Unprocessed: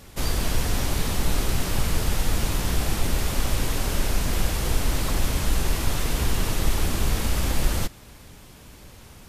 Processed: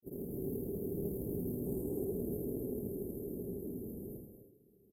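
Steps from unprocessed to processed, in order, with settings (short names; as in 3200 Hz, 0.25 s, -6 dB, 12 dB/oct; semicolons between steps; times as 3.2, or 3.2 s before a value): Doppler pass-by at 2.93, 10 m/s, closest 5.2 m; inverse Chebyshev band-stop 1400–5200 Hz, stop band 70 dB; spectral gain 3.15–3.77, 680–9700 Hz +7 dB; HPF 200 Hz 12 dB/oct; bell 400 Hz +10.5 dB 0.22 oct; reverse; compressor 12:1, threshold -43 dBFS, peak gain reduction 15 dB; reverse; grains 0.1 s, pitch spread up and down by 0 st; time stretch by phase-locked vocoder 0.53×; on a send: echo 81 ms -4 dB; on the sum: non-linear reverb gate 0.27 s rising, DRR 7 dB; Doppler distortion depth 0.1 ms; gain +10 dB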